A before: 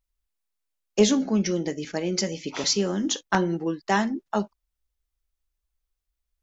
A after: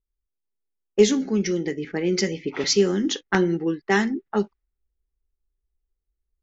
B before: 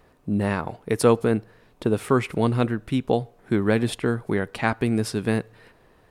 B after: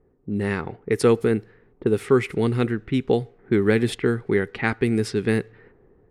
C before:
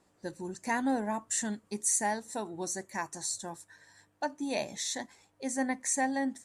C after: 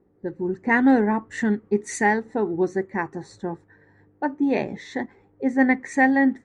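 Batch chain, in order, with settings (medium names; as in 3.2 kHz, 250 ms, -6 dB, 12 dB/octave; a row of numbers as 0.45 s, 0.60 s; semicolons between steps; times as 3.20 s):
graphic EQ with 31 bands 400 Hz +7 dB, 630 Hz -11 dB, 1 kHz -7 dB, 2 kHz +6 dB; level-controlled noise filter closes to 650 Hz, open at -17.5 dBFS; level rider gain up to 5.5 dB; normalise loudness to -23 LUFS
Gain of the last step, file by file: -2.5 dB, -4.0 dB, +8.0 dB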